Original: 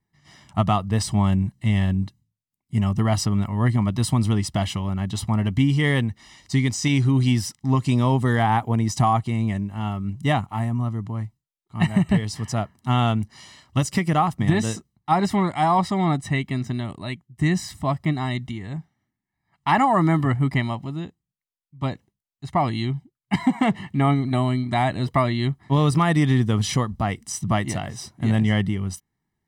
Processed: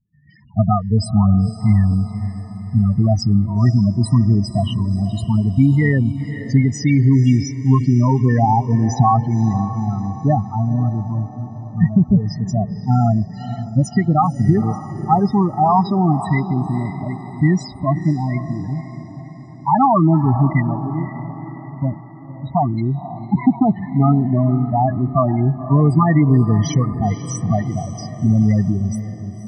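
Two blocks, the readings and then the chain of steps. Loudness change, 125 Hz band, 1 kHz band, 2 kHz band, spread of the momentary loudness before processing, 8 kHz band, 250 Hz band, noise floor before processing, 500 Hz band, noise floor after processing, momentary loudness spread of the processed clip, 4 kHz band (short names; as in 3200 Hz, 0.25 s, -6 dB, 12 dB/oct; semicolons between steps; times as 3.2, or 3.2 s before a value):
+5.0 dB, +6.5 dB, +4.0 dB, -3.0 dB, 10 LU, n/a, +6.0 dB, -85 dBFS, +3.5 dB, -35 dBFS, 12 LU, -5.0 dB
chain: loudest bins only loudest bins 8; diffused feedback echo 0.521 s, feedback 52%, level -12 dB; gain +6 dB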